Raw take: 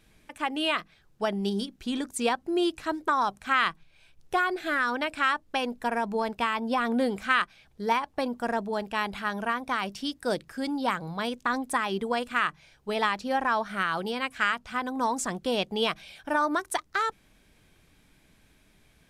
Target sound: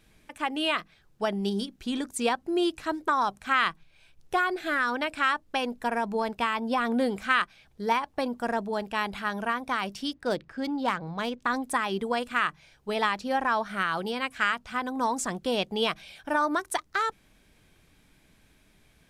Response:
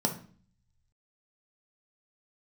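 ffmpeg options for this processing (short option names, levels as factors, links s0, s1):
-filter_complex "[0:a]asettb=1/sr,asplit=3[s0][s1][s2];[s0]atrim=end=10.134[s3];[s1]atrim=start=10.13:end=11.42,asetpts=PTS-STARTPTS,afade=t=in:d=0.004:c=qsin,afade=t=out:st=1.286:d=0.004:c=qsin,adynamicsmooth=sensitivity=6:basefreq=3200[s4];[s2]atrim=start=11.416[s5];[s3][s4]acrossfade=d=0.004:c1=hsin:c2=qsin[s6];[s6][s5]acrossfade=d=0.004:c1=qsin:c2=hsin"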